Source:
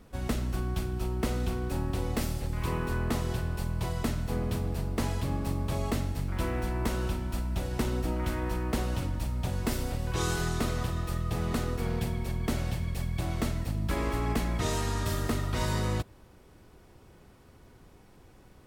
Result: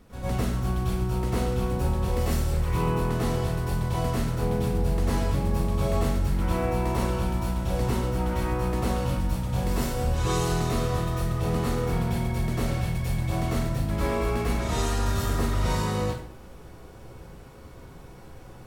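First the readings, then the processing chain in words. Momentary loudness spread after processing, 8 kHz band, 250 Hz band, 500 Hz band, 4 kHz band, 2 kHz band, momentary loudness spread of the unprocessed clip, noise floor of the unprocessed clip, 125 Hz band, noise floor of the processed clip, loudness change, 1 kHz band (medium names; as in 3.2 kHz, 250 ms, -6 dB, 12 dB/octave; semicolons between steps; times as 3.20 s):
3 LU, +2.5 dB, +4.0 dB, +6.0 dB, +2.5 dB, +2.0 dB, 3 LU, -56 dBFS, +5.0 dB, -45 dBFS, +4.5 dB, +6.0 dB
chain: in parallel at -2.5 dB: compressor with a negative ratio -36 dBFS; on the sum: plate-style reverb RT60 0.57 s, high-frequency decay 0.75×, pre-delay 85 ms, DRR -9 dB; trim -8 dB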